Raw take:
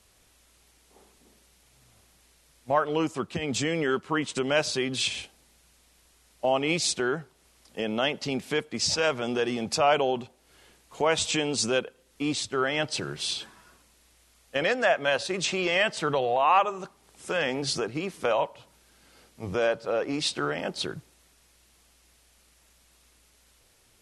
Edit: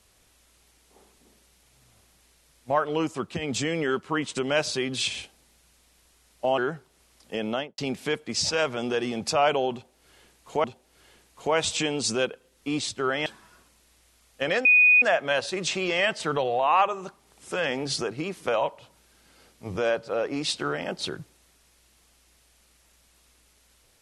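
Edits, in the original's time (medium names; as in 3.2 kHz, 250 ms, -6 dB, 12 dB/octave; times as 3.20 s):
6.58–7.03 s: delete
7.94–8.23 s: studio fade out
10.18–11.09 s: loop, 2 plays
12.80–13.40 s: delete
14.79 s: add tone 2.48 kHz -13.5 dBFS 0.37 s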